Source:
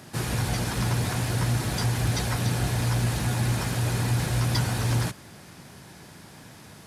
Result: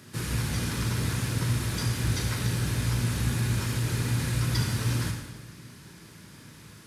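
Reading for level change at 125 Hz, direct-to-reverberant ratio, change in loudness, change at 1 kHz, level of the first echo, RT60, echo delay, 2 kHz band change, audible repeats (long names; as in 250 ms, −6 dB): −2.0 dB, 2.0 dB, −2.0 dB, −6.5 dB, no echo audible, 1.1 s, no echo audible, −2.0 dB, no echo audible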